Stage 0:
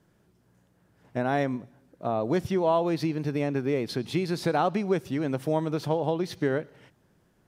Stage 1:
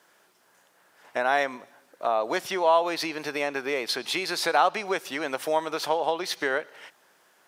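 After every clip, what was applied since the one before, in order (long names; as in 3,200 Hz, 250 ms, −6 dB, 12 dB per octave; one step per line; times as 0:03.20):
high-pass filter 810 Hz 12 dB per octave
in parallel at 0 dB: downward compressor, threshold −42 dBFS, peak gain reduction 17.5 dB
on the sum: level +6.5 dB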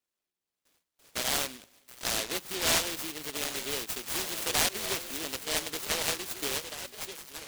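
noise gate with hold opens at −49 dBFS
echo through a band-pass that steps 725 ms, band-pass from 3,400 Hz, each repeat −1.4 octaves, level −2.5 dB
short delay modulated by noise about 3,000 Hz, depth 0.37 ms
level −6.5 dB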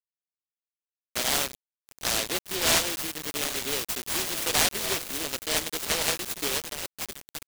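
bit-depth reduction 6 bits, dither none
level +3.5 dB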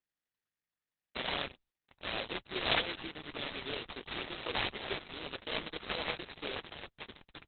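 level −5 dB
Opus 6 kbit/s 48,000 Hz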